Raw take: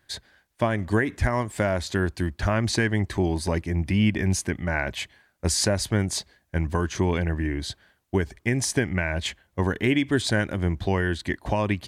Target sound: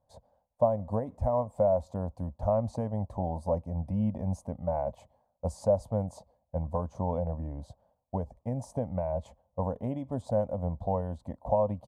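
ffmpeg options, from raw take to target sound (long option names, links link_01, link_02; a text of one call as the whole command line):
ffmpeg -i in.wav -af "firequalizer=gain_entry='entry(250,0);entry(360,-19);entry(510,11);entry(950,4);entry(1600,-29);entry(7300,-17)':delay=0.05:min_phase=1,volume=-7.5dB" out.wav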